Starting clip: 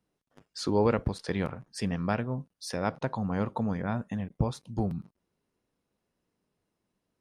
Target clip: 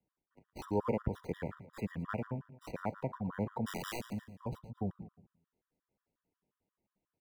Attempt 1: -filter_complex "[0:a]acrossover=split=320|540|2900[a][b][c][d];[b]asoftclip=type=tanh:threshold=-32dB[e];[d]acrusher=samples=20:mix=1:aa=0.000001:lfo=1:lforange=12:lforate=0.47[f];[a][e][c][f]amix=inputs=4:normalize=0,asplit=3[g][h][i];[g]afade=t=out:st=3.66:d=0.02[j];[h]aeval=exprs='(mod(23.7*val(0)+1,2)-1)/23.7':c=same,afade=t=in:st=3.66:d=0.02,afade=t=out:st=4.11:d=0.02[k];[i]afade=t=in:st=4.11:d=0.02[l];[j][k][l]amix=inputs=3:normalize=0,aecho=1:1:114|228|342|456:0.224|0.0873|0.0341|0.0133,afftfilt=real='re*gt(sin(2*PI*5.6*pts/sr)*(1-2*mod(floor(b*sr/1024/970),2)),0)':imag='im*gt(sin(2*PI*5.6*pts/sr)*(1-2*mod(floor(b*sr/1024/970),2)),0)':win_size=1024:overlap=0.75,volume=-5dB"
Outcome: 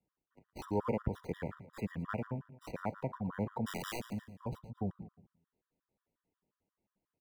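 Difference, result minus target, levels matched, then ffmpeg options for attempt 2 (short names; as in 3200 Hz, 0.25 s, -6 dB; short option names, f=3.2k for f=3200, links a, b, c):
soft clip: distortion +8 dB
-filter_complex "[0:a]acrossover=split=320|540|2900[a][b][c][d];[b]asoftclip=type=tanh:threshold=-25.5dB[e];[d]acrusher=samples=20:mix=1:aa=0.000001:lfo=1:lforange=12:lforate=0.47[f];[a][e][c][f]amix=inputs=4:normalize=0,asplit=3[g][h][i];[g]afade=t=out:st=3.66:d=0.02[j];[h]aeval=exprs='(mod(23.7*val(0)+1,2)-1)/23.7':c=same,afade=t=in:st=3.66:d=0.02,afade=t=out:st=4.11:d=0.02[k];[i]afade=t=in:st=4.11:d=0.02[l];[j][k][l]amix=inputs=3:normalize=0,aecho=1:1:114|228|342|456:0.224|0.0873|0.0341|0.0133,afftfilt=real='re*gt(sin(2*PI*5.6*pts/sr)*(1-2*mod(floor(b*sr/1024/970),2)),0)':imag='im*gt(sin(2*PI*5.6*pts/sr)*(1-2*mod(floor(b*sr/1024/970),2)),0)':win_size=1024:overlap=0.75,volume=-5dB"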